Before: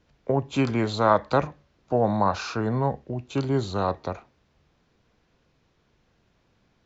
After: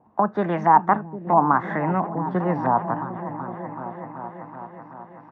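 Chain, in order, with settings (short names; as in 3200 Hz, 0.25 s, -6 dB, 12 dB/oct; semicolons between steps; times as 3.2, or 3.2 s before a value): speed glide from 154% -> 104%; high shelf 2100 Hz -12 dB; notch 5100 Hz, Q 7.6; comb 1.1 ms, depth 36%; in parallel at +1 dB: compressor, threshold -33 dBFS, peak gain reduction 16 dB; on the sum: Chebyshev high-pass 190 Hz, order 2; LFO low-pass saw up 1.5 Hz 880–2400 Hz; on a send: repeats that get brighter 0.378 s, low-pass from 200 Hz, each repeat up 1 oct, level -6 dB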